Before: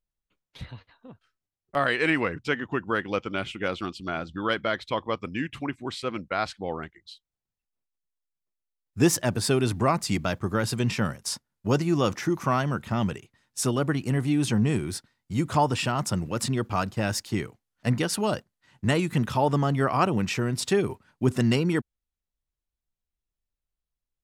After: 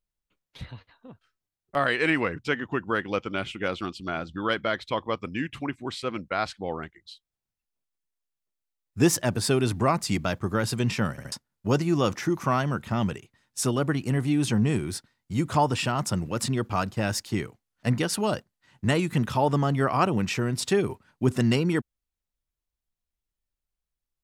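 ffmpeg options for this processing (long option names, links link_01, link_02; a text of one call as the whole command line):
ffmpeg -i in.wav -filter_complex "[0:a]asplit=4[link_01][link_02][link_03][link_04];[link_01]atrim=end=11.182[link_05];[link_02]atrim=start=11.108:end=11.182[link_06];[link_03]atrim=start=11.108:end=11.182[link_07];[link_04]atrim=start=11.318[link_08];[link_05][link_06]acrossfade=duration=0.004:curve1=hsin:curve2=hsin[link_09];[link_09][link_07]acrossfade=duration=0.004:curve1=hsin:curve2=hsin[link_10];[link_10][link_08]acrossfade=duration=0.004:curve1=hsin:curve2=hsin" out.wav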